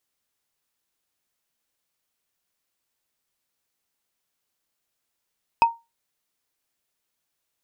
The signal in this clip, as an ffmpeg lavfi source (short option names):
-f lavfi -i "aevalsrc='0.355*pow(10,-3*t/0.23)*sin(2*PI*926*t)+0.126*pow(10,-3*t/0.068)*sin(2*PI*2553*t)+0.0447*pow(10,-3*t/0.03)*sin(2*PI*5004.1*t)+0.0158*pow(10,-3*t/0.017)*sin(2*PI*8272*t)+0.00562*pow(10,-3*t/0.01)*sin(2*PI*12352.8*t)':d=0.45:s=44100"